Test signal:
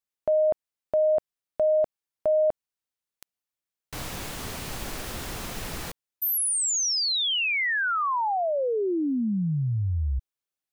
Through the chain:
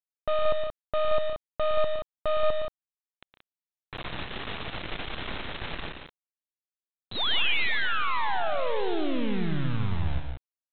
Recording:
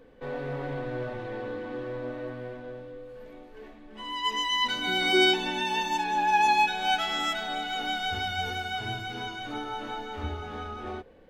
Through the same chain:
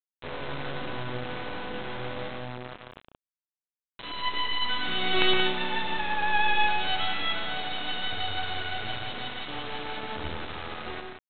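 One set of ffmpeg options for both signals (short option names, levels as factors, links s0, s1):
-af "aemphasis=mode=production:type=50kf,aresample=8000,acrusher=bits=3:dc=4:mix=0:aa=0.000001,aresample=44100,aecho=1:1:113.7|145.8|177.8:0.398|0.251|0.447"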